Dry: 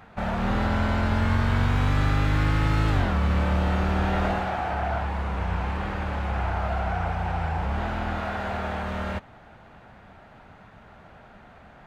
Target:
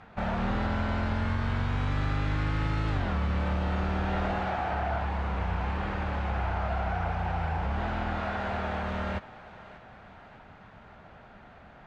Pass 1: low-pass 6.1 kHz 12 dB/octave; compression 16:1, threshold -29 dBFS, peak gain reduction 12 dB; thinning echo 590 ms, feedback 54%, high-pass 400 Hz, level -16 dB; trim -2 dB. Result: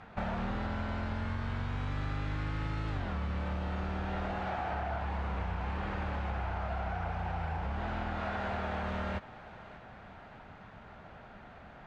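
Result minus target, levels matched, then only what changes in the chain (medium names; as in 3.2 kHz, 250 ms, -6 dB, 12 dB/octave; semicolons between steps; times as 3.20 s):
compression: peak gain reduction +6.5 dB
change: compression 16:1, threshold -22 dBFS, peak gain reduction 5.5 dB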